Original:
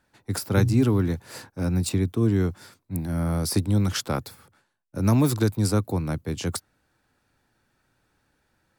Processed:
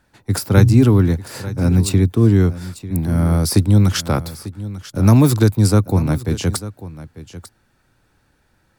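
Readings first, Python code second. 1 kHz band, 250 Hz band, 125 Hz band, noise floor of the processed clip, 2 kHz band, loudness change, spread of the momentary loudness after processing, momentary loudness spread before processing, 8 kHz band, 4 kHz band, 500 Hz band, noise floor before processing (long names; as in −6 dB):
+6.5 dB, +8.0 dB, +10.0 dB, −62 dBFS, +6.5 dB, +9.0 dB, 17 LU, 11 LU, +6.5 dB, +6.5 dB, +7.0 dB, −72 dBFS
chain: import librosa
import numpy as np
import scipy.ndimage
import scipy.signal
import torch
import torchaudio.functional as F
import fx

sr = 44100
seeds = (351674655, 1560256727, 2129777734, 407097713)

y = fx.low_shelf(x, sr, hz=130.0, db=6.0)
y = y + 10.0 ** (-15.5 / 20.0) * np.pad(y, (int(895 * sr / 1000.0), 0))[:len(y)]
y = F.gain(torch.from_numpy(y), 6.5).numpy()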